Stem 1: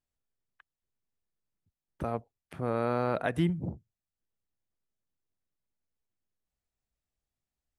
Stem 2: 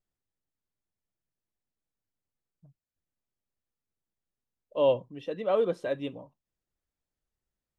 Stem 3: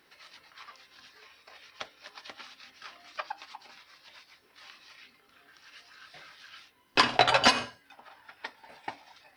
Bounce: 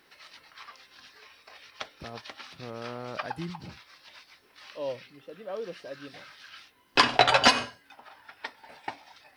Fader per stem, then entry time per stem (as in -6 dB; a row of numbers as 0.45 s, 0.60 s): -9.5 dB, -10.5 dB, +2.0 dB; 0.00 s, 0.00 s, 0.00 s